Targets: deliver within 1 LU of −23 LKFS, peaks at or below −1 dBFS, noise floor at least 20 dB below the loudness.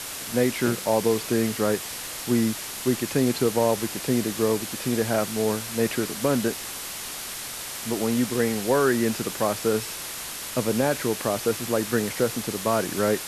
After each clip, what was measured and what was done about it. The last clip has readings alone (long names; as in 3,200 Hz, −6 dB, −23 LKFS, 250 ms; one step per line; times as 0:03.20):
background noise floor −35 dBFS; target noise floor −45 dBFS; integrated loudness −25.0 LKFS; sample peak −9.5 dBFS; target loudness −23.0 LKFS
→ broadband denoise 10 dB, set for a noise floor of −35 dBFS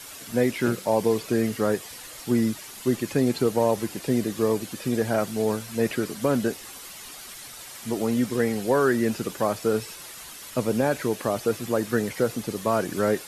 background noise floor −42 dBFS; target noise floor −46 dBFS
→ broadband denoise 6 dB, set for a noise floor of −42 dBFS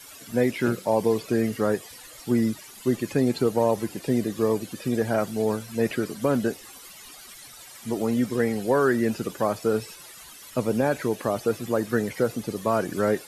background noise floor −46 dBFS; integrated loudness −25.5 LKFS; sample peak −10.0 dBFS; target loudness −23.0 LKFS
→ level +2.5 dB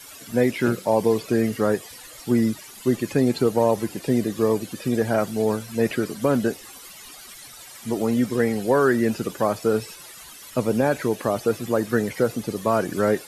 integrated loudness −23.0 LKFS; sample peak −7.5 dBFS; background noise floor −43 dBFS